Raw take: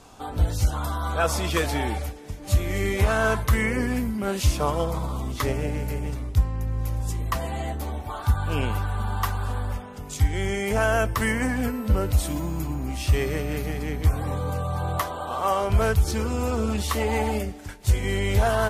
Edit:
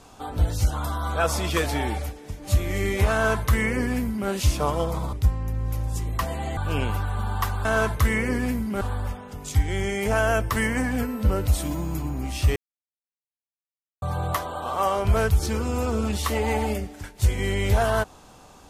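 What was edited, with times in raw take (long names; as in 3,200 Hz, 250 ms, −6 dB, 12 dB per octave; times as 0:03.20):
0:03.13–0:04.29: duplicate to 0:09.46
0:05.13–0:06.26: remove
0:07.70–0:08.38: remove
0:13.21–0:14.67: silence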